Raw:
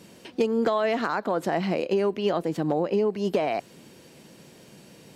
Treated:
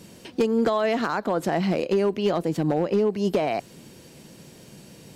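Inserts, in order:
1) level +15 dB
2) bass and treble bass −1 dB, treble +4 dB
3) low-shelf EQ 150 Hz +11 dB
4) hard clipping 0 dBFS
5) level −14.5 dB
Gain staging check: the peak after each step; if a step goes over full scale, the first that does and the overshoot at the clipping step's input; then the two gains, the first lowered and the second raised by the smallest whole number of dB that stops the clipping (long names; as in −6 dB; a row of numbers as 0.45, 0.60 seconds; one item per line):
+2.5, +2.5, +4.0, 0.0, −14.5 dBFS
step 1, 4.0 dB
step 1 +11 dB, step 5 −10.5 dB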